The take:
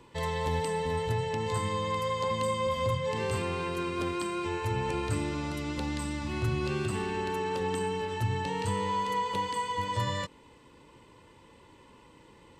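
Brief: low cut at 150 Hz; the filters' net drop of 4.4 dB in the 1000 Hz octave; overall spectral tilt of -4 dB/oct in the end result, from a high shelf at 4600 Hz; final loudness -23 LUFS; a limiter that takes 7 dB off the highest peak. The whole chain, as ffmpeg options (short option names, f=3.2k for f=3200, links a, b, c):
-af "highpass=150,equalizer=f=1k:t=o:g=-5,highshelf=f=4.6k:g=7,volume=11dB,alimiter=limit=-13.5dB:level=0:latency=1"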